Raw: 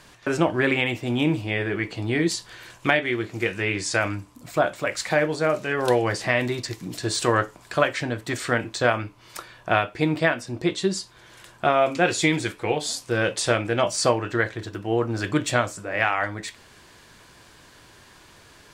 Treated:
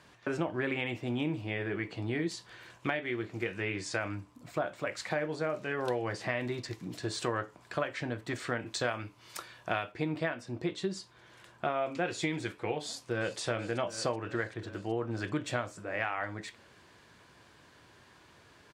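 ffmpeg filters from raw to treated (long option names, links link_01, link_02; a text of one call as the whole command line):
ffmpeg -i in.wav -filter_complex "[0:a]asettb=1/sr,asplit=3[link_01][link_02][link_03];[link_01]atrim=end=8.664[link_04];[link_02]atrim=start=8.66:end=9.92,asetpts=PTS-STARTPTS,afade=type=in:duration=0.004:curve=qsin,afade=type=out:start_time=1.256:duration=0.004:curve=qsin,highshelf=frequency=3400:gain=11[link_05];[link_03]atrim=start=9.916[link_06];[link_04][link_05]acrossfade=duration=0.004:curve1=hsin:curve2=qsin[link_07];[link_07][link_06]acrossfade=duration=0.004:curve1=qsin:curve2=hsin,asplit=2[link_08][link_09];[link_09]afade=type=in:start_time=12.82:duration=0.01,afade=type=out:start_time=13.39:duration=0.01,aecho=0:1:380|760|1140|1520|1900|2280|2660|3040|3420:0.237137|0.165996|0.116197|0.0813381|0.0569367|0.0398557|0.027899|0.0195293|0.0136705[link_10];[link_08][link_10]amix=inputs=2:normalize=0,highpass=68,aemphasis=mode=reproduction:type=cd,acompressor=threshold=-23dB:ratio=2.5,volume=-7dB" out.wav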